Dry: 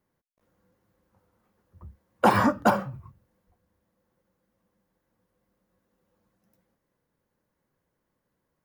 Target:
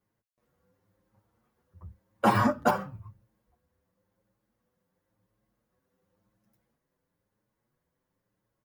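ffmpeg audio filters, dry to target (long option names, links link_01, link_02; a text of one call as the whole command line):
ffmpeg -i in.wav -filter_complex "[0:a]equalizer=frequency=110:width=4.9:gain=6.5,asplit=2[link_01][link_02];[link_02]adelay=7.1,afreqshift=0.96[link_03];[link_01][link_03]amix=inputs=2:normalize=1" out.wav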